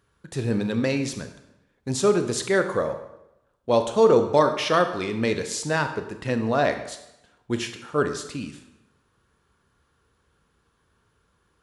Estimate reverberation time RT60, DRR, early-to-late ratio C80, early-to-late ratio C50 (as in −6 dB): 0.90 s, 7.5 dB, 11.5 dB, 9.5 dB